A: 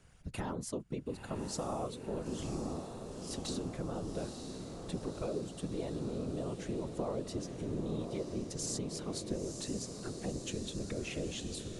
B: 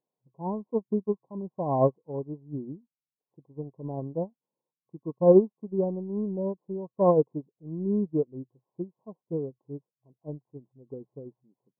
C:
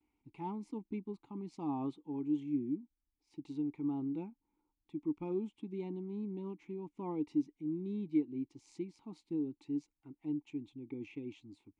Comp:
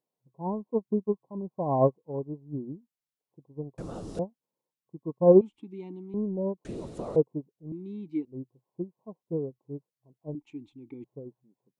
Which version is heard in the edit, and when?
B
3.78–4.19 s: from A
5.41–6.14 s: from C
6.65–7.16 s: from A
7.72–8.25 s: from C
10.35–11.04 s: from C

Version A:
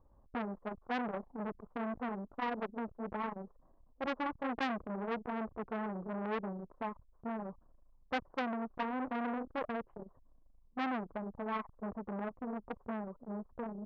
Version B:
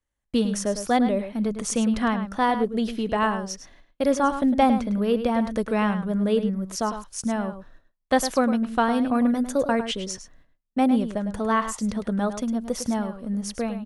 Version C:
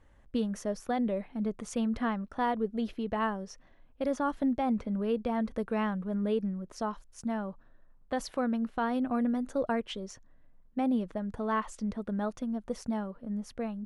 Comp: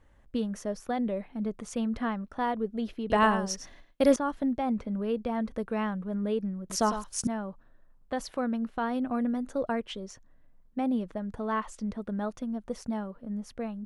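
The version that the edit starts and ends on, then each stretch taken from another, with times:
C
3.10–4.16 s: from B
6.70–7.27 s: from B
not used: A

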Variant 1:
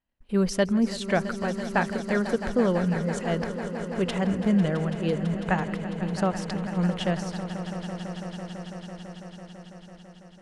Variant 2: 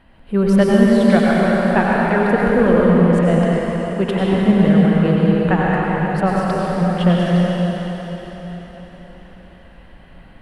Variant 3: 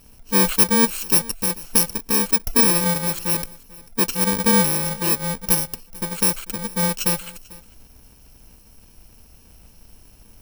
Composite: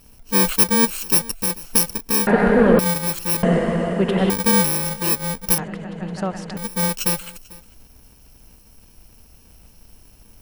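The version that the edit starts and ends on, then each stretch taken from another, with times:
3
2.27–2.79 s: from 2
3.43–4.30 s: from 2
5.58–6.57 s: from 1

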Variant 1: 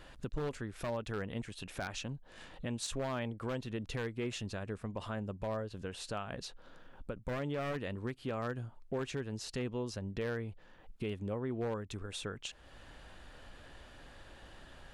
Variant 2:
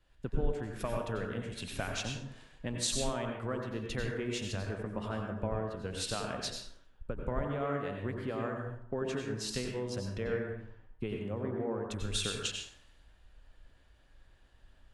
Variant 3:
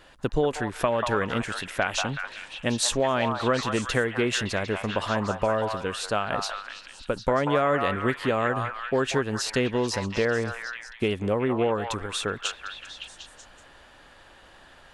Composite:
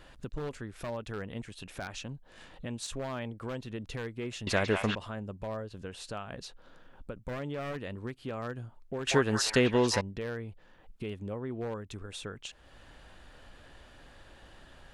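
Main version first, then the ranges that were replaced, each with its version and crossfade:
1
4.47–4.95 s: from 3
9.07–10.01 s: from 3
not used: 2

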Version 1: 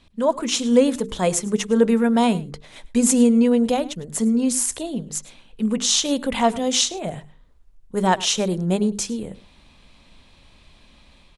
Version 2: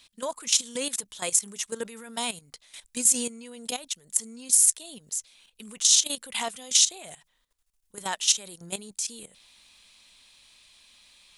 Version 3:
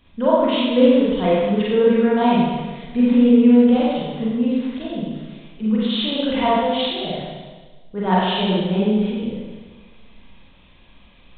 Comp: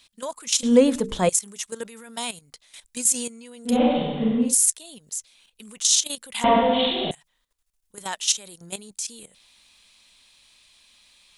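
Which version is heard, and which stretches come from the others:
2
0.63–1.29 s: from 1
3.73–4.47 s: from 3, crossfade 0.16 s
6.44–7.11 s: from 3

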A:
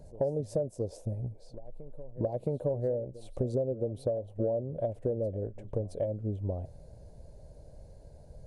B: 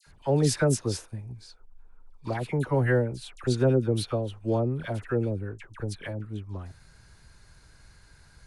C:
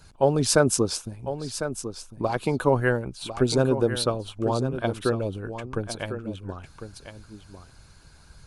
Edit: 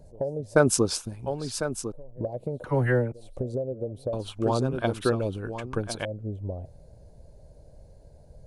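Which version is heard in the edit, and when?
A
0.56–1.92 s: from C
2.64–3.12 s: from B
4.13–6.05 s: from C

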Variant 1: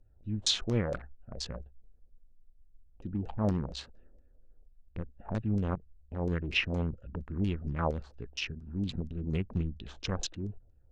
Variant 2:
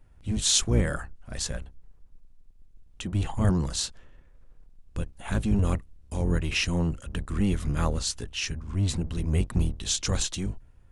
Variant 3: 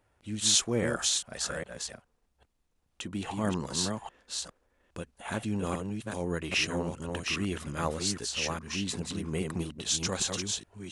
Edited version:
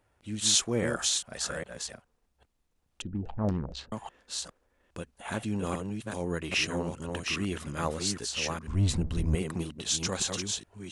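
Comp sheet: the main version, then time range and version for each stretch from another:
3
3.02–3.92 s: from 1
8.67–9.35 s: from 2

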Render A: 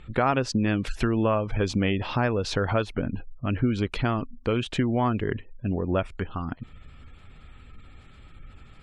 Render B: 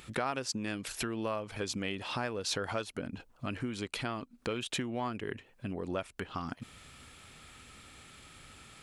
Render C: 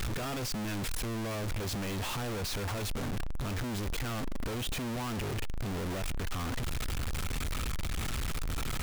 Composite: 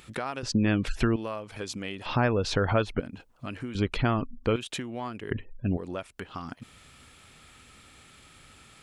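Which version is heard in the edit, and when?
B
0.43–1.16 s: from A
2.06–3.00 s: from A
3.75–4.56 s: from A
5.31–5.77 s: from A
not used: C

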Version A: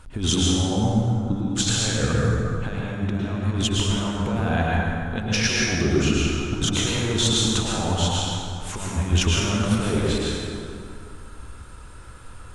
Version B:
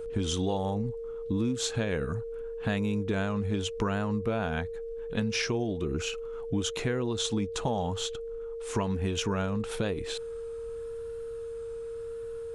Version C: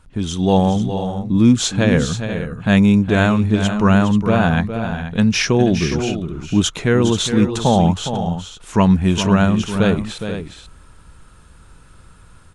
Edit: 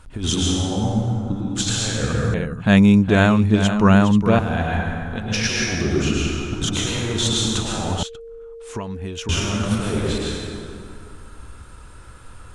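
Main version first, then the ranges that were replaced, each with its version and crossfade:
A
2.34–4.39 s: from C
8.03–9.29 s: from B

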